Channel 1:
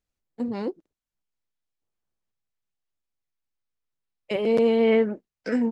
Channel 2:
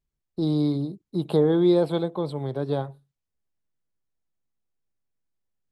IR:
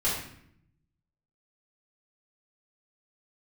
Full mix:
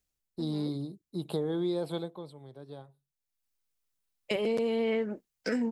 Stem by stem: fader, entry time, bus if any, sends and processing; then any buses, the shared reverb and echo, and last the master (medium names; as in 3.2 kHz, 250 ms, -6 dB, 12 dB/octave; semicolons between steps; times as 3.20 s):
-0.5 dB, 0.00 s, no send, auto duck -16 dB, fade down 0.45 s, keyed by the second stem
1.97 s -8.5 dB -> 2.36 s -19.5 dB, 0.00 s, no send, none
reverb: none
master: treble shelf 4.3 kHz +10.5 dB; compression 6:1, threshold -27 dBFS, peak gain reduction 10 dB